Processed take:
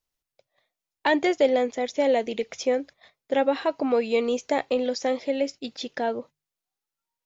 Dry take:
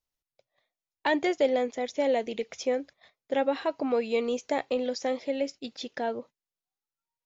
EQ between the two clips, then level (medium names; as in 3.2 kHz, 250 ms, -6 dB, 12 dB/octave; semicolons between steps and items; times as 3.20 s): hum notches 50/100/150 Hz; +4.0 dB